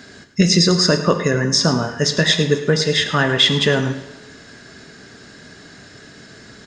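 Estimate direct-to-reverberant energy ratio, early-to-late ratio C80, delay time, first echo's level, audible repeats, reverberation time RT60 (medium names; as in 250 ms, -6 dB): 8.0 dB, 10.5 dB, 107 ms, -14.0 dB, 1, 1.2 s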